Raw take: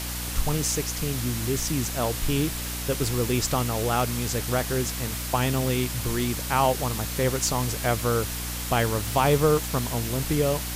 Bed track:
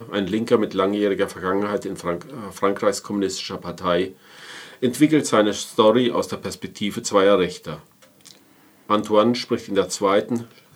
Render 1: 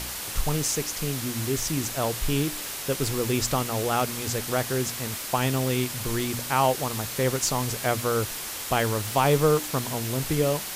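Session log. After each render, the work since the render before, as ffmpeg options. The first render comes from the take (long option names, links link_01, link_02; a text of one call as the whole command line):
ffmpeg -i in.wav -af "bandreject=frequency=60:width_type=h:width=4,bandreject=frequency=120:width_type=h:width=4,bandreject=frequency=180:width_type=h:width=4,bandreject=frequency=240:width_type=h:width=4,bandreject=frequency=300:width_type=h:width=4" out.wav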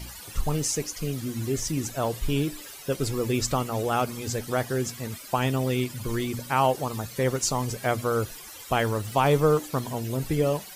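ffmpeg -i in.wav -af "afftdn=noise_reduction=15:noise_floor=-35" out.wav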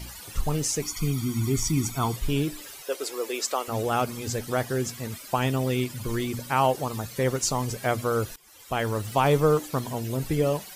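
ffmpeg -i in.wav -filter_complex "[0:a]asettb=1/sr,asplit=3[link_01][link_02][link_03];[link_01]atrim=end=0.824[link_04];[link_02]atrim=start=0.82:end=2.16,asetpts=PTS-STARTPTS,afade=type=in:duration=0.004:curve=qsin,afade=type=out:start_time=1.336:duration=0.004:curve=qsin,aecho=1:1:0.9:0.92,atrim=end_sample=59094[link_05];[link_03]atrim=start=2.156[link_06];[link_04][link_05]acrossfade=duration=0.004:curve1=hsin:curve2=qsin[link_07];[link_07][link_06]acrossfade=duration=0.004:curve1=qsin:curve2=hsin,asettb=1/sr,asplit=3[link_08][link_09][link_10];[link_08]atrim=end=2.824[link_11];[link_09]atrim=start=2.82:end=3.68,asetpts=PTS-STARTPTS,afade=type=in:duration=0.004:curve=qsin,afade=type=out:start_time=0.856:duration=0.004:curve=qsin,highpass=frequency=390:width=0.5412,highpass=frequency=390:width=1.3066[link_12];[link_10]atrim=start=3.676[link_13];[link_11][link_12]acrossfade=duration=0.004:curve1=hsin:curve2=qsin[link_14];[link_14][link_13]acrossfade=duration=0.004:curve1=qsin:curve2=hsin,asplit=2[link_15][link_16];[link_15]atrim=end=8.36,asetpts=PTS-STARTPTS,afade=type=out:start_time=8.356:duration=0.004:curve=hsin:silence=0.1[link_17];[link_16]atrim=start=8.36,asetpts=PTS-STARTPTS,afade=type=in:duration=0.63:silence=0.1[link_18];[link_17][link_18]concat=n=2:v=0:a=1" out.wav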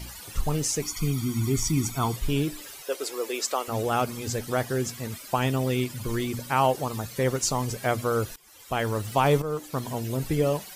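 ffmpeg -i in.wav -filter_complex "[0:a]asplit=2[link_01][link_02];[link_01]atrim=end=9.42,asetpts=PTS-STARTPTS,afade=type=out:start_time=9.416:duration=0.004:curve=hsin:silence=0.199526[link_03];[link_02]atrim=start=9.42,asetpts=PTS-STARTPTS,afade=type=in:duration=0.48:silence=0.199526[link_04];[link_03][link_04]concat=n=2:v=0:a=1" out.wav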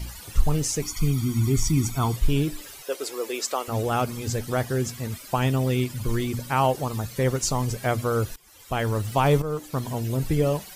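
ffmpeg -i in.wav -af "lowshelf=frequency=120:gain=9" out.wav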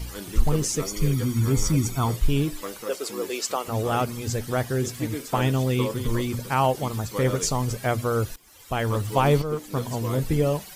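ffmpeg -i in.wav -i bed.wav -filter_complex "[1:a]volume=-15.5dB[link_01];[0:a][link_01]amix=inputs=2:normalize=0" out.wav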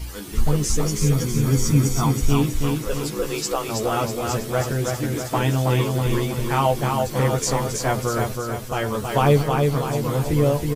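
ffmpeg -i in.wav -filter_complex "[0:a]asplit=2[link_01][link_02];[link_02]adelay=14,volume=-4dB[link_03];[link_01][link_03]amix=inputs=2:normalize=0,asplit=2[link_04][link_05];[link_05]aecho=0:1:323|646|969|1292|1615|1938|2261:0.631|0.322|0.164|0.0837|0.0427|0.0218|0.0111[link_06];[link_04][link_06]amix=inputs=2:normalize=0" out.wav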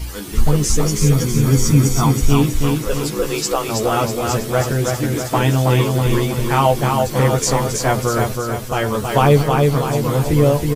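ffmpeg -i in.wav -af "volume=5dB,alimiter=limit=-2dB:level=0:latency=1" out.wav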